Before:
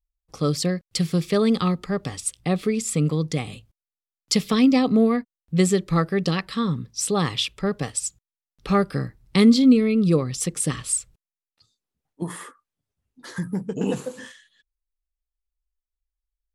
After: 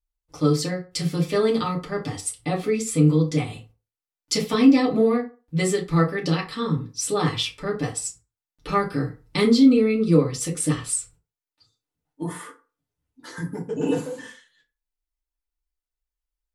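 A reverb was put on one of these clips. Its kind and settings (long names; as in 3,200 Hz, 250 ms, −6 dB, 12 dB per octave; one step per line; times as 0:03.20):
feedback delay network reverb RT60 0.33 s, low-frequency decay 0.85×, high-frequency decay 0.6×, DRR −4 dB
level −5 dB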